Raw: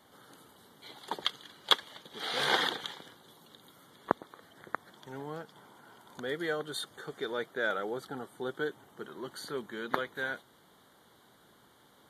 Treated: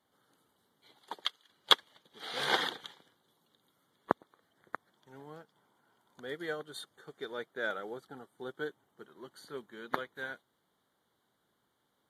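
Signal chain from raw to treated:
0:01.03–0:01.48: high-pass filter 250 Hz → 830 Hz 6 dB per octave
expander for the loud parts 1.5 to 1, over −54 dBFS
level +1.5 dB

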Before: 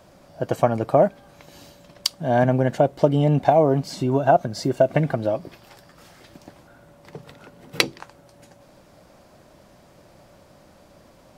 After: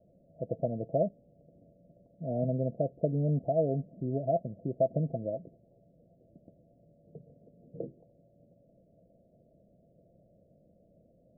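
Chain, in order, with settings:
Chebyshev low-pass with heavy ripple 690 Hz, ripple 6 dB
level −8 dB

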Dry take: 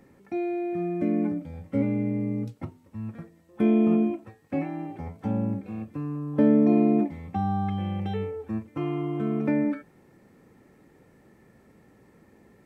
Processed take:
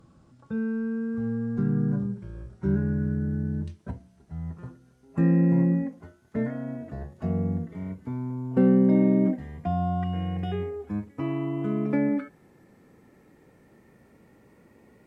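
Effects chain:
gliding playback speed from 62% → 106%

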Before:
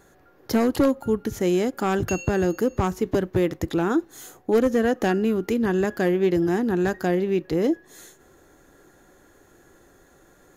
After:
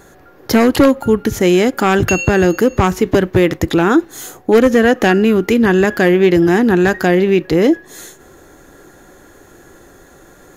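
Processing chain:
dynamic equaliser 2,300 Hz, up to +6 dB, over −41 dBFS, Q 0.88
in parallel at −0.5 dB: brickwall limiter −18.5 dBFS, peak gain reduction 8.5 dB
on the sum: level +6 dB

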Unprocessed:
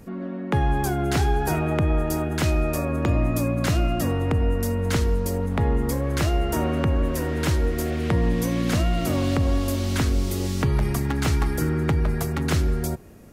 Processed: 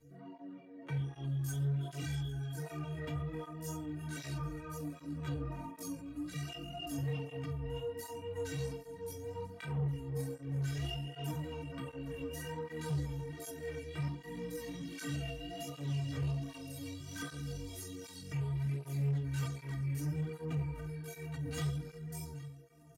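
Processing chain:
rotating-speaker cabinet horn 5.5 Hz
multi-voice chorus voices 4, 0.52 Hz, delay 13 ms, depth 1.9 ms
stiff-string resonator 140 Hz, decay 0.6 s, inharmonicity 0.03
dynamic equaliser 610 Hz, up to −5 dB, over −56 dBFS, Q 0.77
shaped tremolo triangle 1.3 Hz, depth 30%
single-tap delay 470 ms −20.5 dB
tempo change 0.58×
soft clipping −39 dBFS, distortion −15 dB
through-zero flanger with one copy inverted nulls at 1.3 Hz, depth 6 ms
level +10.5 dB

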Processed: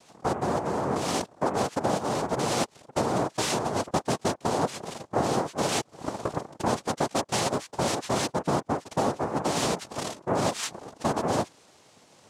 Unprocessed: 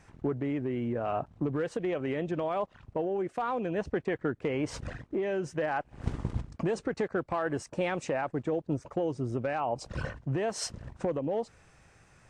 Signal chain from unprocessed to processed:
cochlear-implant simulation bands 2
level +4 dB

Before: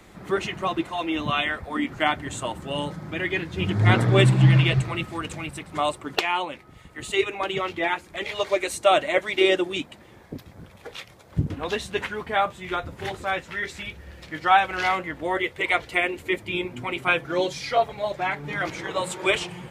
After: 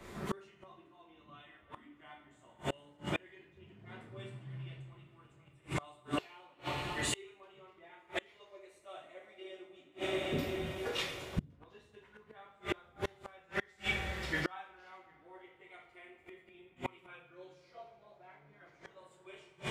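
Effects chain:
coupled-rooms reverb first 0.57 s, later 4.3 s, from −18 dB, DRR −5 dB
gate with flip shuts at −17 dBFS, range −32 dB
one half of a high-frequency compander decoder only
level −4 dB

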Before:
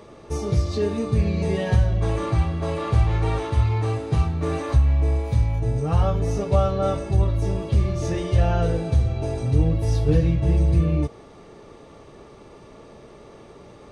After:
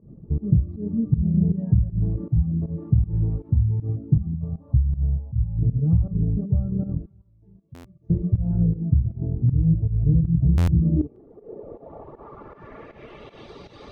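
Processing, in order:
0:04.35–0:05.59: phaser with its sweep stopped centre 840 Hz, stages 4
0:07.06–0:08.10: first-order pre-emphasis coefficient 0.97
reverb reduction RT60 0.92 s
in parallel at −2.5 dB: brickwall limiter −18 dBFS, peak gain reduction 11 dB
on the sum: downward compressor 3 to 1, threshold −18 dBFS, peak gain reduction 6.5 dB
low-pass filter sweep 180 Hz → 4,100 Hz, 0:10.63–0:13.49
fake sidechain pumping 158 BPM, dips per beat 1, −19 dB, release 129 ms
hum removal 199.7 Hz, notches 3
on a send: delay with a high-pass on its return 149 ms, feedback 37%, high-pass 1,900 Hz, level −9.5 dB
on the sum: buffer that repeats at 0:07.74/0:10.57, samples 512, times 8
highs frequency-modulated by the lows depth 0.19 ms

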